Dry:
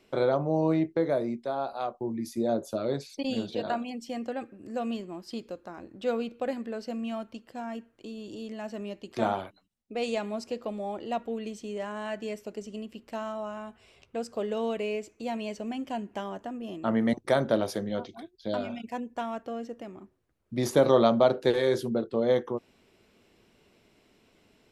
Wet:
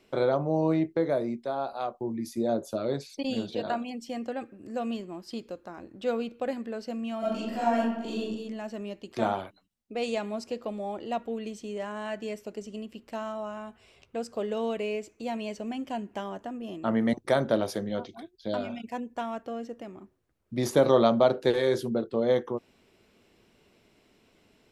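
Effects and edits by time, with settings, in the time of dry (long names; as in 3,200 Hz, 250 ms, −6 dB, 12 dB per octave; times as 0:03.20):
0:07.19–0:08.20: thrown reverb, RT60 0.98 s, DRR −11.5 dB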